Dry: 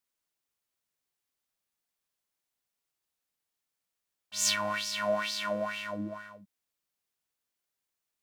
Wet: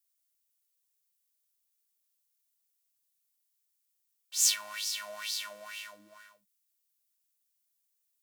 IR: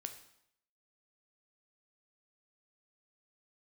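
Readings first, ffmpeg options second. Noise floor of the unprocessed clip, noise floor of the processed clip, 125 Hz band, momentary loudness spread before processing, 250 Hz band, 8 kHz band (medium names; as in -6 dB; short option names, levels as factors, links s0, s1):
under -85 dBFS, -79 dBFS, under -25 dB, 13 LU, under -25 dB, +4.0 dB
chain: -af "aderivative,volume=1.68"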